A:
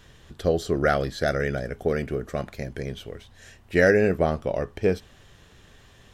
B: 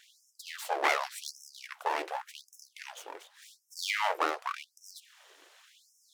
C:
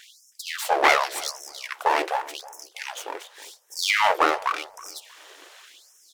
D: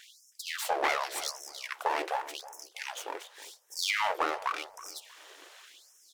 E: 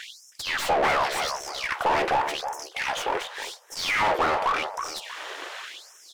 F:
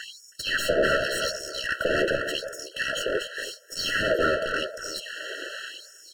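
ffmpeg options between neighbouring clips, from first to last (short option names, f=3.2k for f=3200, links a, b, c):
-af "aeval=exprs='abs(val(0))':c=same,afftfilt=real='re*gte(b*sr/1024,290*pow(5300/290,0.5+0.5*sin(2*PI*0.88*pts/sr)))':imag='im*gte(b*sr/1024,290*pow(5300/290,0.5+0.5*sin(2*PI*0.88*pts/sr)))':win_size=1024:overlap=0.75"
-filter_complex "[0:a]asplit=2[a][b];[b]asoftclip=type=tanh:threshold=-23.5dB,volume=-4dB[c];[a][c]amix=inputs=2:normalize=0,asplit=2[d][e];[e]adelay=319,lowpass=f=1.1k:p=1,volume=-16dB,asplit=2[f][g];[g]adelay=319,lowpass=f=1.1k:p=1,volume=0.29,asplit=2[h][i];[i]adelay=319,lowpass=f=1.1k:p=1,volume=0.29[j];[d][f][h][j]amix=inputs=4:normalize=0,volume=6.5dB"
-af "acompressor=threshold=-22dB:ratio=3,volume=-4.5dB"
-filter_complex "[0:a]asplit=2[a][b];[b]highpass=f=720:p=1,volume=27dB,asoftclip=type=tanh:threshold=-13.5dB[c];[a][c]amix=inputs=2:normalize=0,lowpass=f=1.7k:p=1,volume=-6dB"
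-af "afftfilt=real='re*eq(mod(floor(b*sr/1024/650),2),0)':imag='im*eq(mod(floor(b*sr/1024/650),2),0)':win_size=1024:overlap=0.75,volume=4dB"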